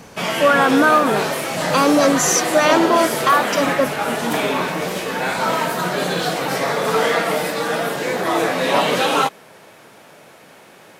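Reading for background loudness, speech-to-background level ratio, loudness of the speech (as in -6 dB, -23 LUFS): -20.0 LUFS, 3.0 dB, -17.0 LUFS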